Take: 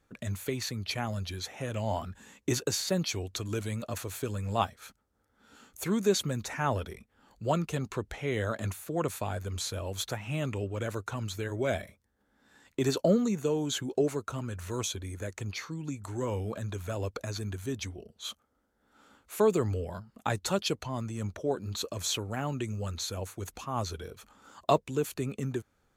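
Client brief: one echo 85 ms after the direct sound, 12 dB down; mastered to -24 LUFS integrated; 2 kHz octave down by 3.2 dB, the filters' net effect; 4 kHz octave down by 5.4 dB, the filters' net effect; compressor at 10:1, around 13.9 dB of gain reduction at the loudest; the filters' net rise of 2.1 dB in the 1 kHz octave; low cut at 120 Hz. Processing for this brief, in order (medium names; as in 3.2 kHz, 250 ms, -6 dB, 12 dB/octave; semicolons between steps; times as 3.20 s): high-pass 120 Hz; peaking EQ 1 kHz +4 dB; peaking EQ 2 kHz -4.5 dB; peaking EQ 4 kHz -5.5 dB; compression 10:1, threshold -33 dBFS; delay 85 ms -12 dB; trim +15.5 dB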